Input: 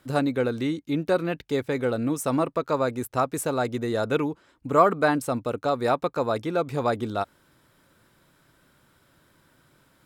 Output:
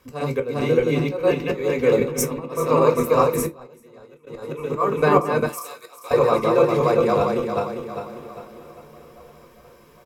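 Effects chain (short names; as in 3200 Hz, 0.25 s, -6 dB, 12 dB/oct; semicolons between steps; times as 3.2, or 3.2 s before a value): regenerating reverse delay 0.2 s, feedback 65%, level -0.5 dB; ripple EQ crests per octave 0.79, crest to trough 7 dB; feedback echo 1.037 s, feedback 50%, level -24 dB; 2.01–2.46 negative-ratio compressor -27 dBFS, ratio -0.5; 3.46–4.27 gate -15 dBFS, range -27 dB; auto swell 0.244 s; 5.46–6.11 differentiator; reverb, pre-delay 4 ms, DRR 4 dB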